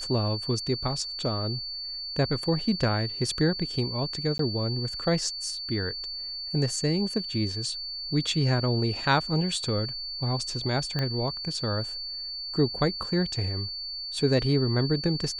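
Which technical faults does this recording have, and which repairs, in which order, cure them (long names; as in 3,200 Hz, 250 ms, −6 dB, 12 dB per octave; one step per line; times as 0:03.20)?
whistle 4,500 Hz −33 dBFS
0:04.38–0:04.39: drop-out 13 ms
0:10.99: click −15 dBFS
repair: click removal
notch filter 4,500 Hz, Q 30
repair the gap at 0:04.38, 13 ms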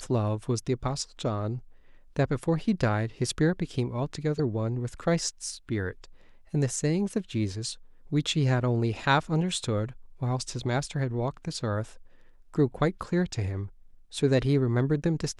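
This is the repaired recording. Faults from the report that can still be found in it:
0:10.99: click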